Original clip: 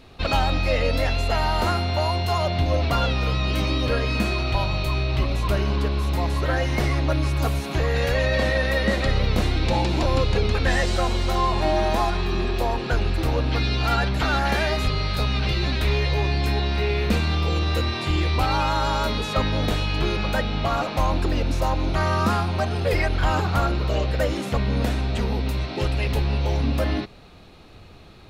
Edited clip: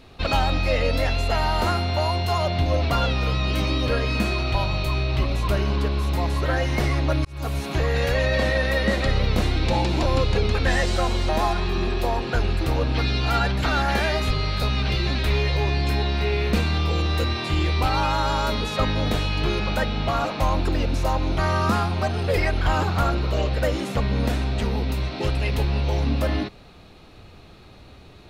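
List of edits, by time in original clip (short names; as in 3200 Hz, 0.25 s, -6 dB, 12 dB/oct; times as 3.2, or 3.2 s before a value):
7.25–7.62 fade in
11.29–11.86 cut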